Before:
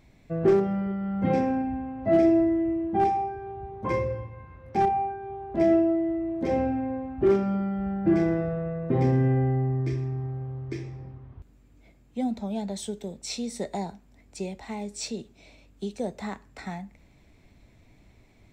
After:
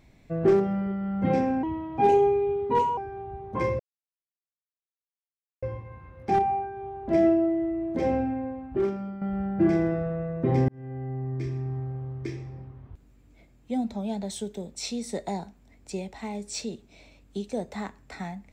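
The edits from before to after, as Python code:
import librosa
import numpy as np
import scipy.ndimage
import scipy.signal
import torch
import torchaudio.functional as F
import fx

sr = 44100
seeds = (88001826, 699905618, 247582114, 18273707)

y = fx.edit(x, sr, fx.speed_span(start_s=1.63, length_s=1.64, speed=1.22),
    fx.insert_silence(at_s=4.09, length_s=1.83),
    fx.fade_out_to(start_s=6.66, length_s=1.02, floor_db=-11.0),
    fx.fade_in_span(start_s=9.15, length_s=1.06), tone=tone)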